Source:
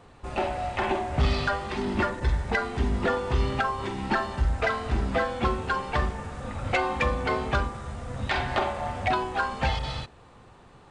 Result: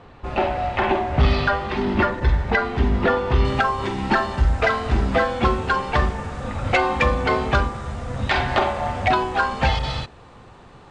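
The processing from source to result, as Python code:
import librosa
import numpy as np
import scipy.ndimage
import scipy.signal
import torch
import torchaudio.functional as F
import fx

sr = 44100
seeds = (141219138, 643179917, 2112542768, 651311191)

y = fx.lowpass(x, sr, hz=fx.steps((0.0, 4000.0), (3.45, 7800.0)), slope=12)
y = F.gain(torch.from_numpy(y), 6.5).numpy()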